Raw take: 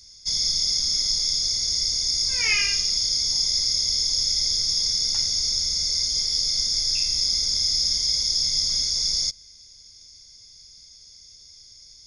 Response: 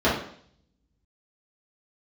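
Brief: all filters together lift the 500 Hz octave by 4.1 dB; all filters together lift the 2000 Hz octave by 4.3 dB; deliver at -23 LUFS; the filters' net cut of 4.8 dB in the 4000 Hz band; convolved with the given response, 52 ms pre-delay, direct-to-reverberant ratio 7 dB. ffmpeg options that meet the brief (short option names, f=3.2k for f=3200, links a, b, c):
-filter_complex "[0:a]equalizer=f=500:t=o:g=4.5,equalizer=f=2k:t=o:g=7.5,equalizer=f=4k:t=o:g=-8.5,asplit=2[a][b];[1:a]atrim=start_sample=2205,adelay=52[c];[b][c]afir=irnorm=-1:irlink=0,volume=-25.5dB[d];[a][d]amix=inputs=2:normalize=0,volume=1dB"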